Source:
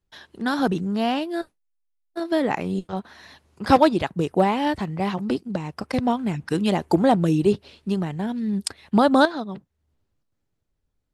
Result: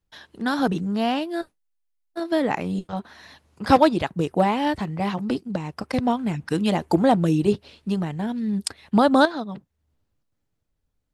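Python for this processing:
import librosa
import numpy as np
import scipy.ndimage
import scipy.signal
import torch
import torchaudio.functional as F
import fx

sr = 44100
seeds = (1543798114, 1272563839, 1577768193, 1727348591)

y = fx.notch(x, sr, hz=380.0, q=12.0)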